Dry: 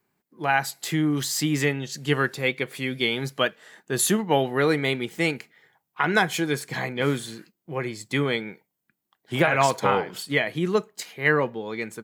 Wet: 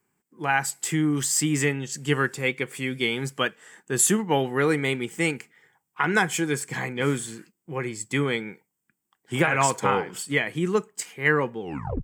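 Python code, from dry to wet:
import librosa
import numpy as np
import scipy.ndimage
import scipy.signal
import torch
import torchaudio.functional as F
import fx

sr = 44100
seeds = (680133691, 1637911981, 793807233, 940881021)

y = fx.tape_stop_end(x, sr, length_s=0.43)
y = fx.graphic_eq_31(y, sr, hz=(630, 4000, 8000, 12500), db=(-8, -10, 10, -3))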